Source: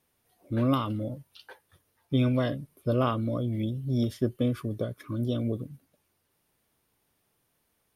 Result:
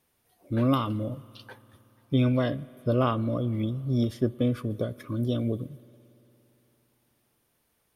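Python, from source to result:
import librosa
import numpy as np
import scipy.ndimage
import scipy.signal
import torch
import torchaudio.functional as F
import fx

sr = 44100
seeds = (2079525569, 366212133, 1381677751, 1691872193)

y = fx.high_shelf(x, sr, hz=5600.0, db=-4.5, at=(2.14, 4.7))
y = fx.rev_spring(y, sr, rt60_s=3.4, pass_ms=(57,), chirp_ms=80, drr_db=20.0)
y = F.gain(torch.from_numpy(y), 1.5).numpy()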